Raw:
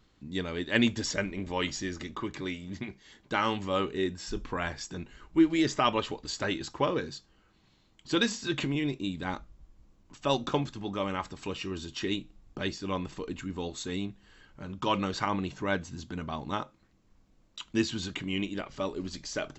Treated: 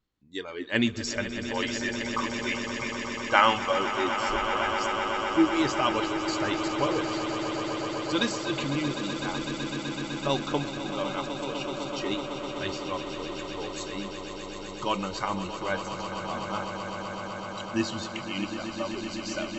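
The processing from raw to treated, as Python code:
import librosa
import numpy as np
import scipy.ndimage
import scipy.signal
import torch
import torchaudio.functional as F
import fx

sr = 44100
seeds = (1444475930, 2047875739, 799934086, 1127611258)

y = fx.noise_reduce_blind(x, sr, reduce_db=17)
y = fx.spec_box(y, sr, start_s=1.68, length_s=2.04, low_hz=460.0, high_hz=3800.0, gain_db=9)
y = fx.echo_swell(y, sr, ms=126, loudest=8, wet_db=-11.5)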